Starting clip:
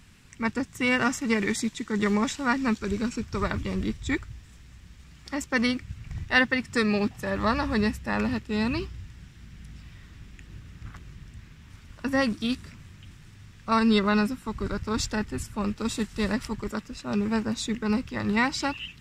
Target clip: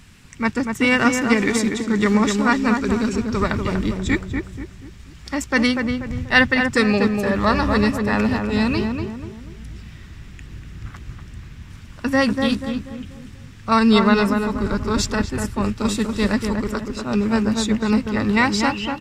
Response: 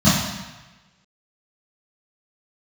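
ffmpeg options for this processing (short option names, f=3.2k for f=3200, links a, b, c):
-filter_complex "[0:a]asplit=2[a][b];[b]adelay=242,lowpass=f=1.5k:p=1,volume=-4dB,asplit=2[c][d];[d]adelay=242,lowpass=f=1.5k:p=1,volume=0.42,asplit=2[e][f];[f]adelay=242,lowpass=f=1.5k:p=1,volume=0.42,asplit=2[g][h];[h]adelay=242,lowpass=f=1.5k:p=1,volume=0.42,asplit=2[i][j];[j]adelay=242,lowpass=f=1.5k:p=1,volume=0.42[k];[a][c][e][g][i][k]amix=inputs=6:normalize=0,volume=6.5dB"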